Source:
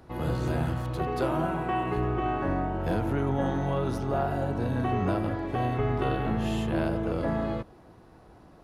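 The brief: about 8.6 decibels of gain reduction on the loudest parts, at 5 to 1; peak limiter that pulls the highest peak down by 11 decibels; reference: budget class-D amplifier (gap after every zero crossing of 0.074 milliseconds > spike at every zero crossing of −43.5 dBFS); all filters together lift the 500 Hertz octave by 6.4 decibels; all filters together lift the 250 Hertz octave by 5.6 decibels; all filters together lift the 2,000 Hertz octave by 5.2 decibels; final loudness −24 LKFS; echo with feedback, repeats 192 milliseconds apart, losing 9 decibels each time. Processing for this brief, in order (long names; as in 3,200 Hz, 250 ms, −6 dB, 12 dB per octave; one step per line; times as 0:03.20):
parametric band 250 Hz +5 dB
parametric band 500 Hz +6.5 dB
parametric band 2,000 Hz +6.5 dB
downward compressor 5 to 1, threshold −28 dBFS
brickwall limiter −29 dBFS
repeating echo 192 ms, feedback 35%, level −9 dB
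gap after every zero crossing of 0.074 ms
spike at every zero crossing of −43.5 dBFS
level +13 dB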